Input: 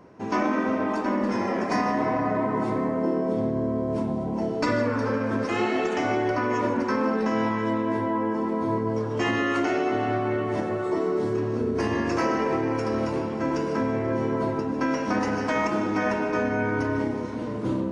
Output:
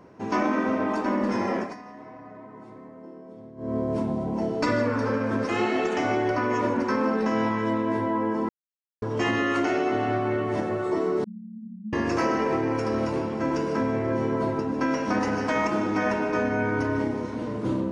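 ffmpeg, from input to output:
ffmpeg -i in.wav -filter_complex "[0:a]asettb=1/sr,asplit=3[link_01][link_02][link_03];[link_01]atrim=end=11.244[link_04];[link_02]atrim=start=11.24:end=11.93,asetpts=PTS-STARTPTS,afade=type=in:duration=0.004:curve=qsin,afade=type=out:start_time=0.686:duration=0.004:curve=qsin,asuperpass=centerf=200:order=8:qfactor=4.9[link_05];[link_03]atrim=start=11.926[link_06];[link_04][link_05]acrossfade=duration=0.004:curve1=hsin:curve2=qsin[link_07];[link_07][link_06]acrossfade=duration=0.004:curve1=qsin:curve2=hsin,asplit=5[link_08][link_09][link_10][link_11][link_12];[link_08]atrim=end=1.75,asetpts=PTS-STARTPTS,afade=type=out:start_time=1.56:duration=0.19:silence=0.112202[link_13];[link_09]atrim=start=1.75:end=3.57,asetpts=PTS-STARTPTS,volume=-19dB[link_14];[link_10]atrim=start=3.57:end=8.49,asetpts=PTS-STARTPTS,afade=type=in:duration=0.19:silence=0.112202,afade=type=out:start_time=4.916:duration=0.004:curve=hsin[link_15];[link_11]atrim=start=8.49:end=9.02,asetpts=PTS-STARTPTS,volume=0[link_16];[link_12]atrim=start=9.02,asetpts=PTS-STARTPTS,afade=type=in:duration=0.004:curve=hsin[link_17];[link_13][link_14][link_15][link_16][link_17]concat=n=5:v=0:a=1" out.wav

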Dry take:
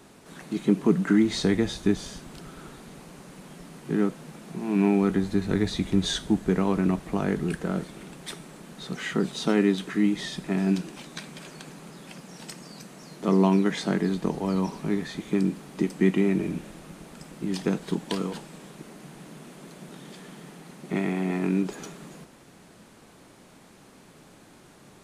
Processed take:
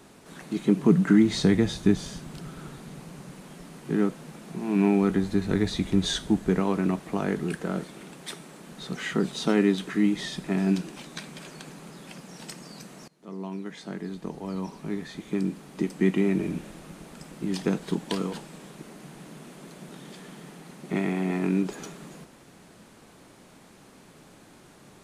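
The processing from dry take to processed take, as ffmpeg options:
ffmpeg -i in.wav -filter_complex "[0:a]asettb=1/sr,asplit=3[link_01][link_02][link_03];[link_01]atrim=end=0.764[link_04];[link_02]atrim=start=0.76:end=3.36,asetpts=PTS-STARTPTS,afade=type=in:duration=0.004:curve=qsin,afade=type=out:start_time=2.596:duration=0.004:curve=qsin,equalizer=frequency=140:width=1.5:gain=7[link_05];[link_03]atrim=start=3.356[link_06];[link_04][link_05]acrossfade=duration=0.004:curve1=hsin:curve2=qsin[link_07];[link_07][link_06]acrossfade=duration=0.004:curve1=qsin:curve2=hsin,asettb=1/sr,asplit=3[link_08][link_09][link_10];[link_08]atrim=end=6.604[link_11];[link_09]atrim=start=6.6:end=8.67,asetpts=PTS-STARTPTS,afade=type=in:duration=0.004:curve=qsin,afade=type=out:start_time=2.066:duration=0.004:curve=qsin,highpass=frequency=150:poles=1[link_12];[link_10]atrim=start=8.666[link_13];[link_11][link_12]acrossfade=duration=0.004:curve1=hsin:curve2=qsin[link_14];[link_14][link_13]acrossfade=duration=0.004:curve1=qsin:curve2=hsin,asplit=2[link_15][link_16];[link_15]atrim=end=13.08,asetpts=PTS-STARTPTS,afade=type=out:start_time=13.076:duration=0.004:curve=hsin:silence=0.0707946[link_17];[link_16]atrim=start=13.08,asetpts=PTS-STARTPTS,afade=type=in:duration=3.52:silence=0.0707946[link_18];[link_17][link_18]concat=n=2:v=0:a=1" out.wav

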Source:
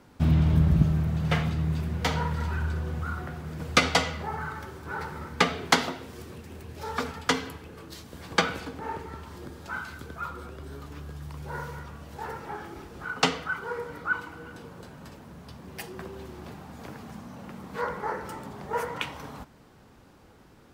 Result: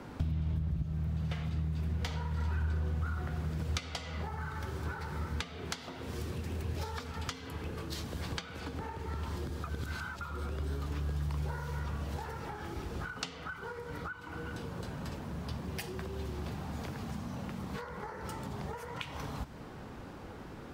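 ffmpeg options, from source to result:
ffmpeg -i in.wav -filter_complex "[0:a]asplit=3[link_01][link_02][link_03];[link_01]atrim=end=9.642[link_04];[link_02]atrim=start=9.638:end=10.212,asetpts=PTS-STARTPTS,areverse[link_05];[link_03]atrim=start=10.208[link_06];[link_04][link_05]acrossfade=duration=0.004:curve1=hsin:curve2=hsin[link_07];[link_07][link_06]acrossfade=duration=0.004:curve1=hsin:curve2=hsin,acompressor=threshold=-37dB:ratio=12,highshelf=frequency=4400:gain=-9,acrossover=split=130|3000[link_08][link_09][link_10];[link_09]acompressor=threshold=-50dB:ratio=6[link_11];[link_08][link_11][link_10]amix=inputs=3:normalize=0,volume=9dB" out.wav

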